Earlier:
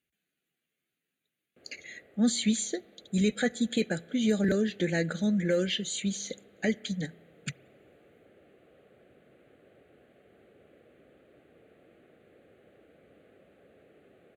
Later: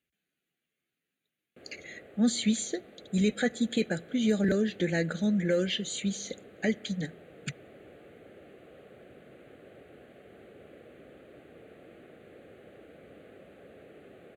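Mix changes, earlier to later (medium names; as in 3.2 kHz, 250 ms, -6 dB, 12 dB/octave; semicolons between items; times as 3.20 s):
speech: add treble shelf 6 kHz -3.5 dB; background +7.5 dB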